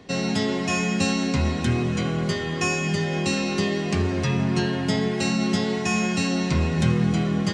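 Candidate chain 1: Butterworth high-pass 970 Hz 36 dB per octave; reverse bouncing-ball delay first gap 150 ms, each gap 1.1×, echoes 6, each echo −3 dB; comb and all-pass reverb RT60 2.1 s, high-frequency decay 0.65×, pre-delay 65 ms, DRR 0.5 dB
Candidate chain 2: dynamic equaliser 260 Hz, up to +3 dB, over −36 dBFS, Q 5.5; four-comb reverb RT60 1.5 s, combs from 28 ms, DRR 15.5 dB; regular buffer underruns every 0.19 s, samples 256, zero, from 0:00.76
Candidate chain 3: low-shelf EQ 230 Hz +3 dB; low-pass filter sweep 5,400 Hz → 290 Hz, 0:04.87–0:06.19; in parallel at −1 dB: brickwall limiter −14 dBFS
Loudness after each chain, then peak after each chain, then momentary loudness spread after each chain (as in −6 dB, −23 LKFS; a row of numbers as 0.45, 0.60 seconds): −24.5, −23.5, −16.0 LKFS; −11.5, −8.0, −2.0 dBFS; 5, 2, 4 LU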